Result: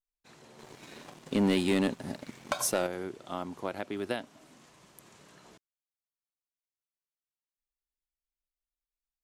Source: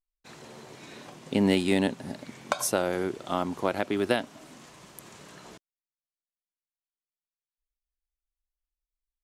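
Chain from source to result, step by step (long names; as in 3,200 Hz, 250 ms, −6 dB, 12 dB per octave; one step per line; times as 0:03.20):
0:00.59–0:02.87: leveller curve on the samples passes 2
level −8 dB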